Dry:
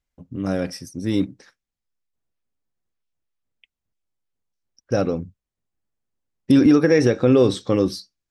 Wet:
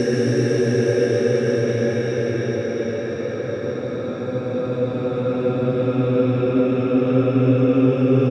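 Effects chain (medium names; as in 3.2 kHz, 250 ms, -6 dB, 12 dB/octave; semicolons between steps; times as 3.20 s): Paulstretch 32×, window 0.25 s, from 7.06 s; echo from a far wall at 22 m, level -7 dB; trim -3 dB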